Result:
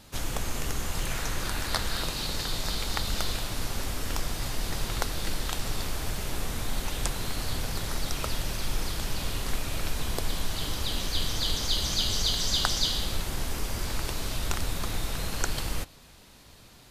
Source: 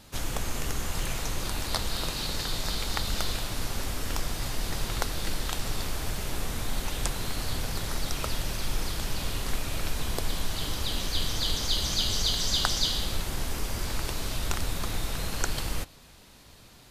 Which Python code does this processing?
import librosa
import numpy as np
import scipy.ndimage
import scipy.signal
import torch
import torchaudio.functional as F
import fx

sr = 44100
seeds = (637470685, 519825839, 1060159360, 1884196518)

y = fx.peak_eq(x, sr, hz=1600.0, db=6.0, octaves=0.71, at=(1.11, 2.03))